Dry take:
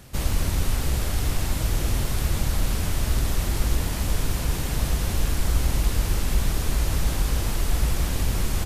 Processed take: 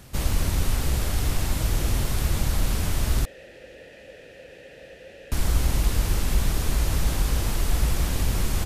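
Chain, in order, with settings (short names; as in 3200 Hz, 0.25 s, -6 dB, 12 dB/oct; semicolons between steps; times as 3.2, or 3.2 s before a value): 3.25–5.32 vowel filter e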